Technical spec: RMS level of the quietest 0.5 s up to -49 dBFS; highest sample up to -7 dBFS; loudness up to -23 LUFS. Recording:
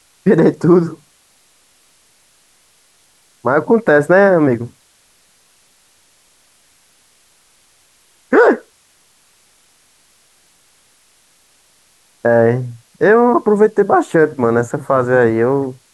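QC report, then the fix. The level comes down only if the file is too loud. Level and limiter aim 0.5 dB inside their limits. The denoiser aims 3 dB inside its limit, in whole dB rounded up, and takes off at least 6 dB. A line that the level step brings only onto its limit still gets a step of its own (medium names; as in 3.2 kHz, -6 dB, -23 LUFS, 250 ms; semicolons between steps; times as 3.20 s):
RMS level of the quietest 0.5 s -54 dBFS: pass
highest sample -1.5 dBFS: fail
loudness -13.5 LUFS: fail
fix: trim -10 dB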